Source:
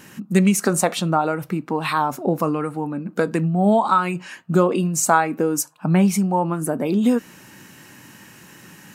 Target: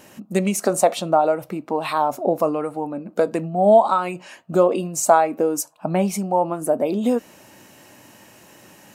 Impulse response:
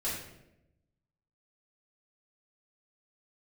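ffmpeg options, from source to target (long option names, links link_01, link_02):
-af "equalizer=frequency=160:width_type=o:width=0.67:gain=-7,equalizer=frequency=630:width_type=o:width=0.67:gain=11,equalizer=frequency=1600:width_type=o:width=0.67:gain=-5,volume=-2.5dB"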